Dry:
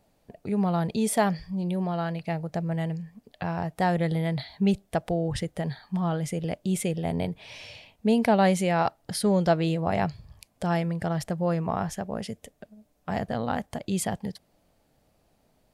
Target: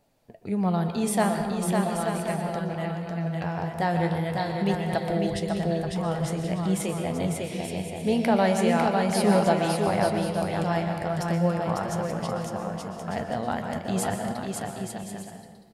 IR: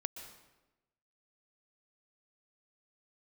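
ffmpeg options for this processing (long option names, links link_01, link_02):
-filter_complex "[0:a]lowshelf=frequency=180:gain=-3,aecho=1:1:550|880|1078|1197|1268:0.631|0.398|0.251|0.158|0.1[link_01];[1:a]atrim=start_sample=2205[link_02];[link_01][link_02]afir=irnorm=-1:irlink=0,flanger=delay=6.8:depth=7.4:regen=64:speed=0.41:shape=triangular,volume=5dB"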